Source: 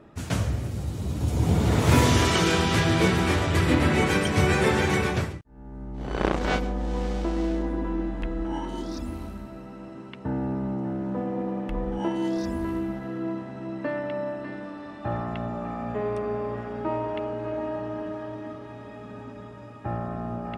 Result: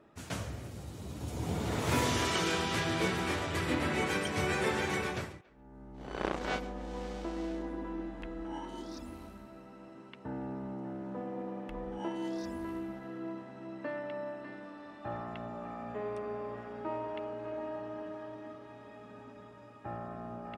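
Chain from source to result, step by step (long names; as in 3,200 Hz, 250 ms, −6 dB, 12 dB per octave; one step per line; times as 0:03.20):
low-shelf EQ 200 Hz −9 dB
far-end echo of a speakerphone 280 ms, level −24 dB
level −7.5 dB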